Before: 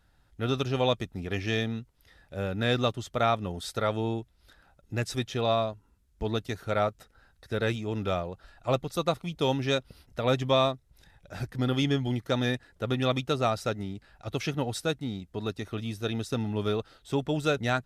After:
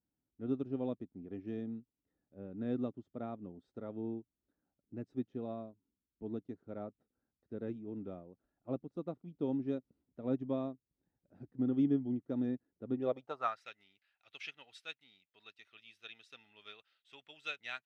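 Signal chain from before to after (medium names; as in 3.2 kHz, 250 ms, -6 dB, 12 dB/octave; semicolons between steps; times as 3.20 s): band-pass sweep 270 Hz -> 2.6 kHz, 12.92–13.69 s; upward expansion 1.5:1, over -50 dBFS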